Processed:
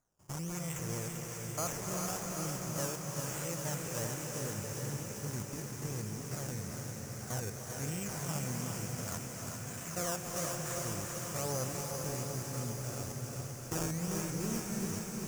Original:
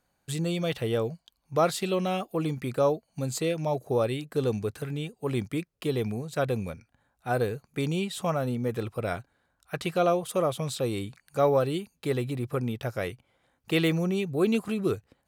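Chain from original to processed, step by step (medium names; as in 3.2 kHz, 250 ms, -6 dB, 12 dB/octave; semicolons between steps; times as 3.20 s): spectrogram pixelated in time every 100 ms; peaking EQ 430 Hz -11 dB 2.4 oct; decimation with a swept rate 15×, swing 100% 1.1 Hz; resonant high shelf 4.9 kHz +8 dB, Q 3; thinning echo 394 ms, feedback 74%, high-pass 450 Hz, level -5.5 dB; on a send at -1.5 dB: reverberation RT60 5.6 s, pre-delay 240 ms; on the sum: endings held to a fixed fall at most 290 dB/s; trim -5 dB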